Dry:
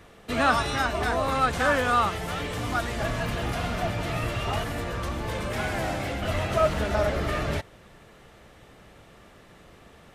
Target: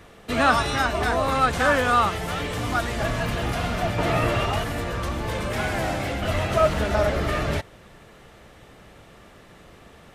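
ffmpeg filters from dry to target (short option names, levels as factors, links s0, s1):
-filter_complex "[0:a]asettb=1/sr,asplit=3[s0][s1][s2];[s0]atrim=end=3.984[s3];[s1]atrim=start=3.98:end=4.46,asetpts=PTS-STARTPTS,afade=t=in:d=0.004:c=qsin,afade=t=out:st=0.476:d=0.004:c=qsin,equalizer=f=610:w=0.31:g=6.5[s4];[s2]atrim=start=4.456[s5];[s3][s4]acrossfade=d=0.004:c1=hsin:c2=qsin[s6];[s6][s5]acrossfade=d=0.004:c1=qsin:c2=hsin,volume=1.41"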